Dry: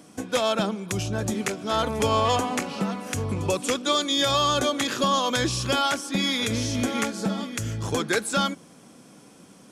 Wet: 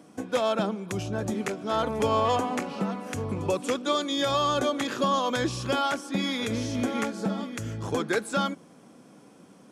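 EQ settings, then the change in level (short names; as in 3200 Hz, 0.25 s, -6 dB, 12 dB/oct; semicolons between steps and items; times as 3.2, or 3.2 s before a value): low shelf 97 Hz -10.5 dB; high shelf 2100 Hz -9.5 dB; 0.0 dB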